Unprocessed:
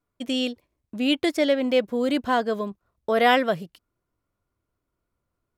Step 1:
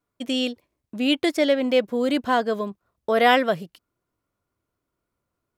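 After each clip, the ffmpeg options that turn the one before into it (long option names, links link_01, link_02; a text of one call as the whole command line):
ffmpeg -i in.wav -af "lowshelf=frequency=65:gain=-11,volume=1.5dB" out.wav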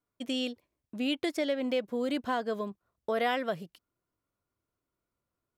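ffmpeg -i in.wav -af "acompressor=threshold=-21dB:ratio=2.5,volume=-6.5dB" out.wav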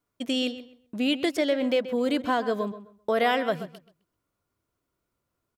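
ffmpeg -i in.wav -filter_complex "[0:a]asplit=2[link_01][link_02];[link_02]adelay=130,lowpass=frequency=3400:poles=1,volume=-13dB,asplit=2[link_03][link_04];[link_04]adelay=130,lowpass=frequency=3400:poles=1,volume=0.24,asplit=2[link_05][link_06];[link_06]adelay=130,lowpass=frequency=3400:poles=1,volume=0.24[link_07];[link_01][link_03][link_05][link_07]amix=inputs=4:normalize=0,volume=5.5dB" out.wav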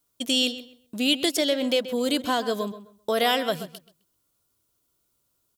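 ffmpeg -i in.wav -af "aexciter=amount=4:drive=3.4:freq=3000" out.wav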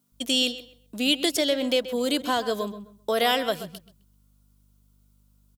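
ffmpeg -i in.wav -filter_complex "[0:a]aeval=exprs='val(0)+0.001*(sin(2*PI*50*n/s)+sin(2*PI*2*50*n/s)/2+sin(2*PI*3*50*n/s)/3+sin(2*PI*4*50*n/s)/4+sin(2*PI*5*50*n/s)/5)':channel_layout=same,acrossover=split=160[link_01][link_02];[link_01]adelay=120[link_03];[link_03][link_02]amix=inputs=2:normalize=0" out.wav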